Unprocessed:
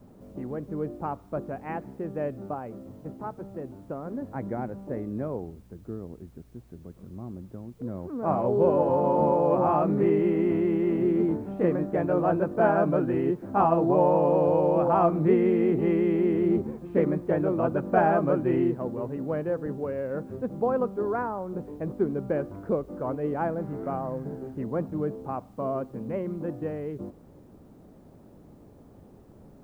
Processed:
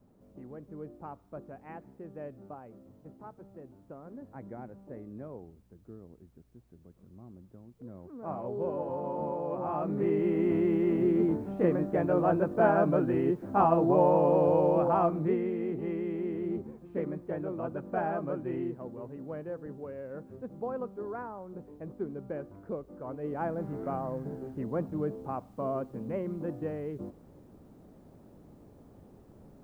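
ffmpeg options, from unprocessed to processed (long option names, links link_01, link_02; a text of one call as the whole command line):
ffmpeg -i in.wav -af "volume=5dB,afade=type=in:start_time=9.61:duration=0.99:silence=0.334965,afade=type=out:start_time=14.66:duration=0.84:silence=0.398107,afade=type=in:start_time=23.05:duration=0.6:silence=0.446684" out.wav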